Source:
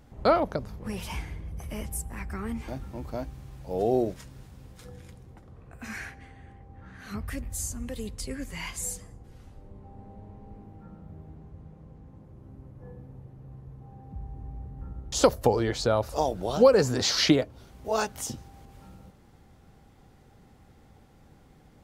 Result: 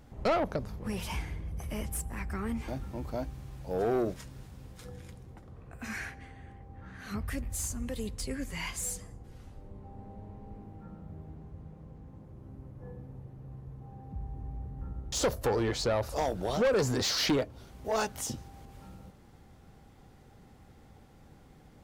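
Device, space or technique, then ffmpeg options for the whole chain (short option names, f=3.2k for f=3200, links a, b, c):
saturation between pre-emphasis and de-emphasis: -af "highshelf=f=5.2k:g=8,asoftclip=type=tanh:threshold=-22.5dB,highshelf=f=5.2k:g=-8"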